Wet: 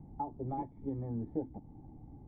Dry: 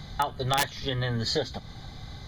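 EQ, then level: vocal tract filter u; air absorption 330 m; +3.5 dB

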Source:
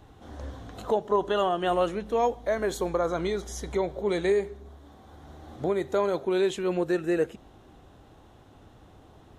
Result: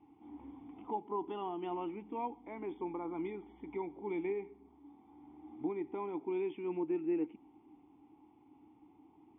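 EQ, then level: vowel filter u; brick-wall FIR low-pass 3600 Hz; air absorption 150 m; +2.5 dB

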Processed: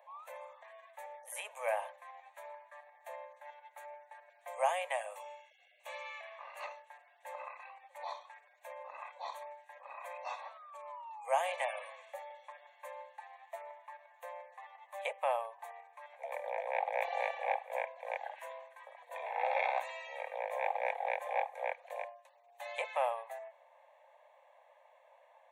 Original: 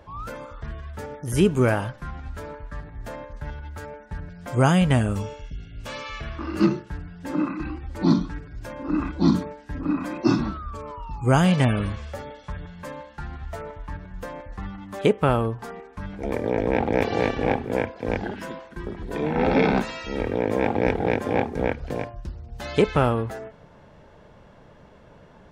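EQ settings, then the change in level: Chebyshev high-pass 520 Hz, order 6; bell 3000 Hz -8.5 dB 0.32 oct; fixed phaser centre 1400 Hz, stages 6; -5.5 dB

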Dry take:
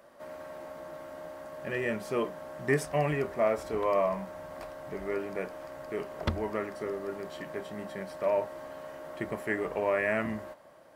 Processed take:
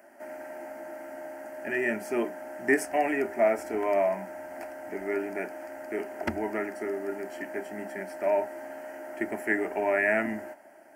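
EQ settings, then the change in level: HPF 160 Hz 12 dB/oct; fixed phaser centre 750 Hz, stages 8; +6.0 dB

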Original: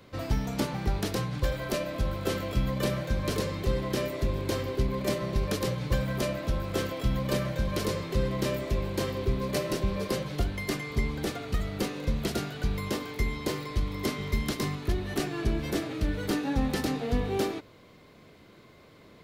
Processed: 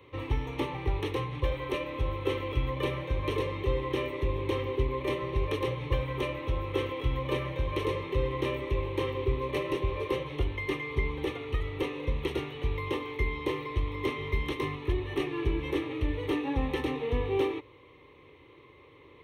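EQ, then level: polynomial smoothing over 15 samples; HPF 48 Hz; fixed phaser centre 1000 Hz, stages 8; +2.5 dB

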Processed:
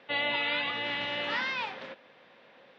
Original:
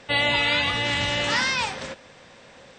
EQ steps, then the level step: HPF 230 Hz 12 dB/oct; LPF 3700 Hz 24 dB/oct; -7.5 dB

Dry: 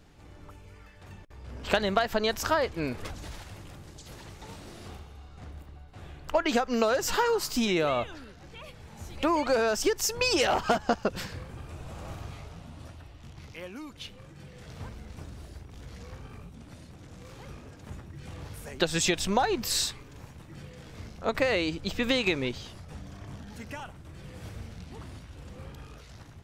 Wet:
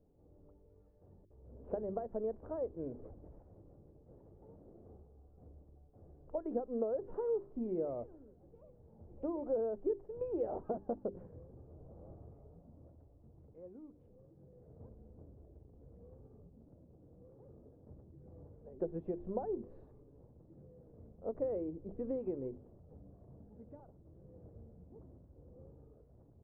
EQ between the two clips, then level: ladder low-pass 600 Hz, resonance 35%; low shelf 370 Hz -4 dB; notches 50/100/150/200/250/300/350/400 Hz; -2.0 dB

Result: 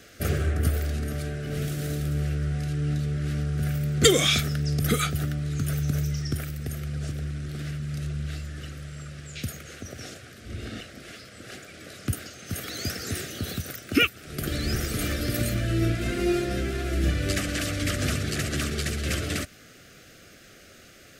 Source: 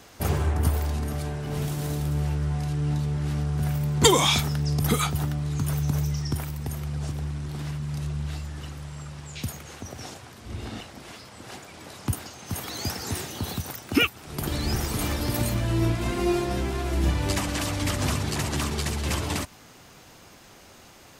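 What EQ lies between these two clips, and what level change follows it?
Butterworth band-stop 940 Hz, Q 1.1; bell 1100 Hz +8.5 dB 1.4 oct; -1.0 dB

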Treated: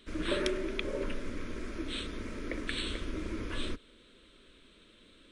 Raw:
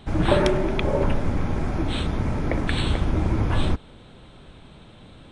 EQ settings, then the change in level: bell 68 Hz -8 dB 0.39 oct; low shelf 440 Hz -7.5 dB; fixed phaser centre 330 Hz, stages 4; -5.0 dB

